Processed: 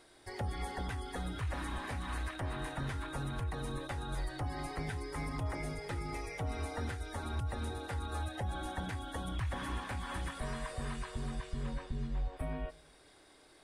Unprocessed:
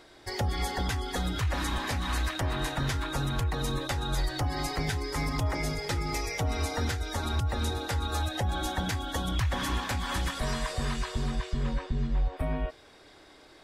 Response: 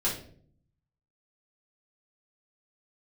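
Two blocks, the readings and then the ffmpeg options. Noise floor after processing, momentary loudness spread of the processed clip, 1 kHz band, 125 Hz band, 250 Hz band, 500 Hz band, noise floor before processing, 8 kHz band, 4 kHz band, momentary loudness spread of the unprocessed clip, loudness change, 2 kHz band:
-61 dBFS, 3 LU, -7.5 dB, -8.0 dB, -8.0 dB, -7.5 dB, -55 dBFS, -12.0 dB, -13.0 dB, 2 LU, -8.5 dB, -8.5 dB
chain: -filter_complex "[0:a]acrossover=split=2900[s0][s1];[s1]acompressor=threshold=0.00316:ratio=4:attack=1:release=60[s2];[s0][s2]amix=inputs=2:normalize=0,equalizer=f=9300:t=o:w=0.33:g=14.5,asplit=2[s3][s4];[1:a]atrim=start_sample=2205[s5];[s4][s5]afir=irnorm=-1:irlink=0,volume=0.0398[s6];[s3][s6]amix=inputs=2:normalize=0,volume=0.398"

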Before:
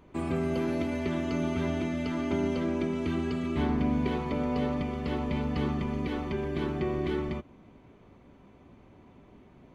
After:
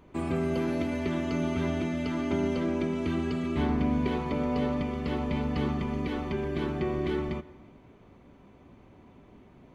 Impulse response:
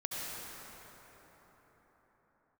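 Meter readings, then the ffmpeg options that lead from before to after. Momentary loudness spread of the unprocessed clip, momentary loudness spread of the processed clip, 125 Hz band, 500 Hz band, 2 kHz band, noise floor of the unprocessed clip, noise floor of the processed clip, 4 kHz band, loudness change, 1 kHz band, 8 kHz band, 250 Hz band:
4 LU, 4 LU, +0.5 dB, +0.5 dB, +0.5 dB, -56 dBFS, -55 dBFS, +0.5 dB, +0.5 dB, +0.5 dB, no reading, +0.5 dB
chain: -filter_complex "[0:a]asplit=2[s0][s1];[1:a]atrim=start_sample=2205,afade=t=out:st=0.42:d=0.01,atrim=end_sample=18963[s2];[s1][s2]afir=irnorm=-1:irlink=0,volume=0.112[s3];[s0][s3]amix=inputs=2:normalize=0"

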